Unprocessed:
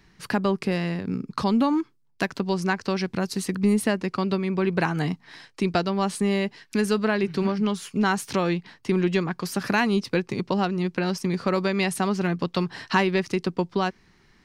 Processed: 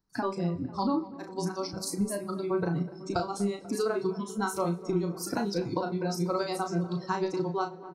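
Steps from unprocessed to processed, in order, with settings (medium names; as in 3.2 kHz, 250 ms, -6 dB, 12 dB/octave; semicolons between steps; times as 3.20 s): spectral noise reduction 22 dB; granular stretch 0.55×, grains 181 ms; compression 4:1, threshold -26 dBFS, peak gain reduction 7.5 dB; high-order bell 2.5 kHz -15 dB 1.2 oct; doubling 35 ms -6.5 dB; on a send: tape echo 246 ms, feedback 90%, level -15.5 dB, low-pass 1.5 kHz; on the sum: two-slope reverb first 0.66 s, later 3.3 s, from -27 dB, DRR 15 dB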